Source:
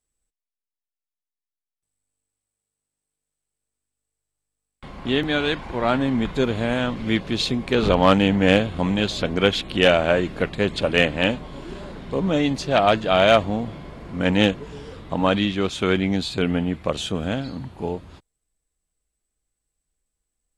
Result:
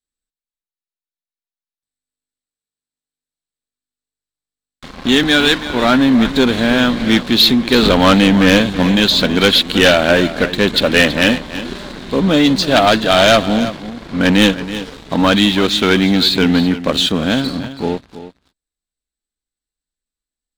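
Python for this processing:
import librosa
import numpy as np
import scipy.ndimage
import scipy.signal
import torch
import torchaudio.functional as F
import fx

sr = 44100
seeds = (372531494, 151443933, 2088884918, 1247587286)

p1 = fx.graphic_eq_15(x, sr, hz=(100, 250, 1600, 4000), db=(-6, 6, 6, 12))
p2 = fx.leveller(p1, sr, passes=3)
p3 = p2 + fx.echo_single(p2, sr, ms=327, db=-13.5, dry=0)
y = F.gain(torch.from_numpy(p3), -4.5).numpy()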